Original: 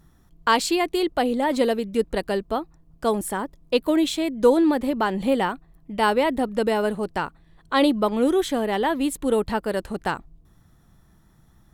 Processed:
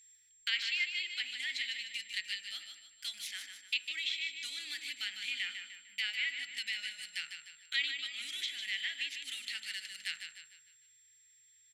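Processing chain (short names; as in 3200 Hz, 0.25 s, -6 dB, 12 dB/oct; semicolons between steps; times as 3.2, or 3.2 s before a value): median filter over 5 samples; elliptic high-pass 2100 Hz, stop band 50 dB; treble ducked by the level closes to 2700 Hz, closed at -33 dBFS; in parallel at -0.5 dB: compressor, threshold -47 dBFS, peak gain reduction 17 dB; on the sum: whine 7500 Hz -54 dBFS; feedback echo 0.151 s, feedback 45%, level -7.5 dB; on a send at -8 dB: reverb RT60 0.90 s, pre-delay 3 ms; on the sum: mismatched tape noise reduction decoder only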